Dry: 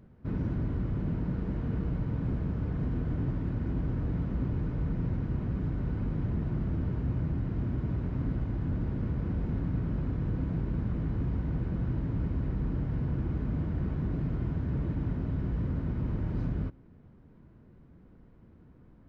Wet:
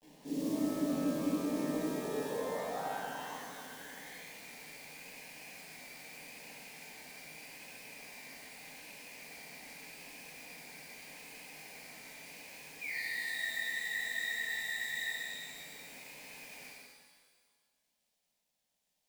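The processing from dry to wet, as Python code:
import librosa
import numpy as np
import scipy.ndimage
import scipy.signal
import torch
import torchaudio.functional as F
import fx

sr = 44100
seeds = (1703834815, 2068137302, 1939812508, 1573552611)

p1 = scipy.signal.sosfilt(scipy.signal.butter(2, 82.0, 'highpass', fs=sr, output='sos'), x)
p2 = fx.bass_treble(p1, sr, bass_db=-12, treble_db=-10)
p3 = p2 + 0.36 * np.pad(p2, (int(2.5 * sr / 1000.0), 0))[:len(p2)]
p4 = 10.0 ** (-39.0 / 20.0) * np.tanh(p3 / 10.0 ** (-39.0 / 20.0))
p5 = p3 + F.gain(torch.from_numpy(p4), -6.0).numpy()
p6 = fx.filter_sweep_bandpass(p5, sr, from_hz=300.0, to_hz=2400.0, start_s=1.69, end_s=4.25, q=7.3)
p7 = fx.vibrato(p6, sr, rate_hz=0.82, depth_cents=58.0)
p8 = fx.spec_paint(p7, sr, seeds[0], shape='fall', start_s=12.81, length_s=0.8, low_hz=400.0, high_hz=2500.0, level_db=-50.0)
p9 = fx.quant_companded(p8, sr, bits=6)
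p10 = fx.dmg_crackle(p9, sr, seeds[1], per_s=260.0, level_db=-80.0)
p11 = fx.fixed_phaser(p10, sr, hz=350.0, stages=6)
p12 = fx.spec_freeze(p11, sr, seeds[2], at_s=12.94, hold_s=2.18)
p13 = fx.rev_shimmer(p12, sr, seeds[3], rt60_s=1.6, semitones=12, shimmer_db=-8, drr_db=-7.5)
y = F.gain(torch.from_numpy(p13), 10.0).numpy()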